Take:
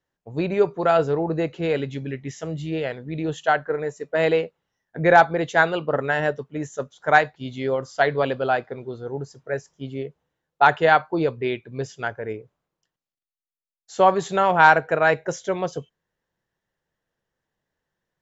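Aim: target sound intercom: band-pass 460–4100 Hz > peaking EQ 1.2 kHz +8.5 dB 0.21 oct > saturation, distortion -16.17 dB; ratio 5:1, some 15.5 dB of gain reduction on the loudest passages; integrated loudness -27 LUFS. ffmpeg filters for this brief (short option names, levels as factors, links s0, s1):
-af "acompressor=threshold=0.0447:ratio=5,highpass=460,lowpass=4100,equalizer=f=1200:t=o:w=0.21:g=8.5,asoftclip=threshold=0.0841,volume=2.66"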